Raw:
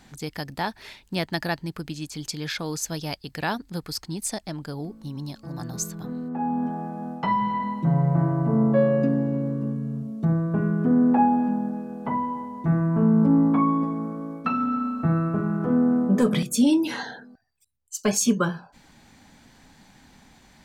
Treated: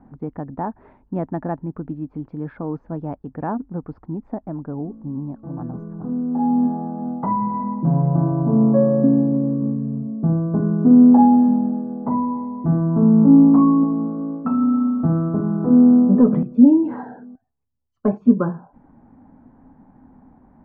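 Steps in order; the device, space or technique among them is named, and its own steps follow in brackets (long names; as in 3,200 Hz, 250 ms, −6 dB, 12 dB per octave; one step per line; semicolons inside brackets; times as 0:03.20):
under water (low-pass filter 1,100 Hz 24 dB per octave; parametric band 260 Hz +8 dB 0.4 octaves)
level +2.5 dB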